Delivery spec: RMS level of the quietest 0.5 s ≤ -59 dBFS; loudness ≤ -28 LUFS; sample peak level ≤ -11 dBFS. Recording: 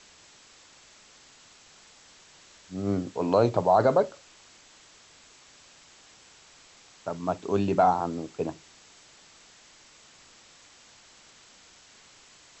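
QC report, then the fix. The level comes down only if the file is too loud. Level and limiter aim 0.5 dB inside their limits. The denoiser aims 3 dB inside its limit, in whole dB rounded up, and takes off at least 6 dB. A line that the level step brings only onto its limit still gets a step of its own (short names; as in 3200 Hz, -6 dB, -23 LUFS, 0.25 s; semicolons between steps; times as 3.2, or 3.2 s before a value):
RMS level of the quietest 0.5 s -55 dBFS: fail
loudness -26.0 LUFS: fail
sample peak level -8.5 dBFS: fail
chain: denoiser 6 dB, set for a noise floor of -55 dBFS; gain -2.5 dB; limiter -11.5 dBFS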